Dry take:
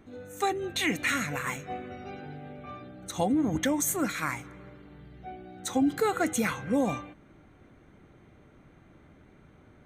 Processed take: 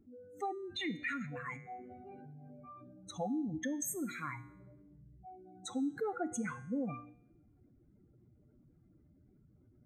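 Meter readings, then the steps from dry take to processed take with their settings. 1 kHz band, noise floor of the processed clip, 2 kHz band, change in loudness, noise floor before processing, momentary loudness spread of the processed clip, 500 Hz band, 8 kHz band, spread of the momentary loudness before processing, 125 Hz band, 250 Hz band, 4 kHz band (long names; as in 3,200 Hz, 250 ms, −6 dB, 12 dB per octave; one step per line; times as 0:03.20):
−10.5 dB, −67 dBFS, −11.0 dB, −10.0 dB, −57 dBFS, 18 LU, −11.0 dB, −11.0 dB, 18 LU, −9.5 dB, −9.5 dB, −11.0 dB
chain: expanding power law on the bin magnitudes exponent 2.3
tuned comb filter 120 Hz, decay 0.82 s, harmonics all, mix 60%
level −2.5 dB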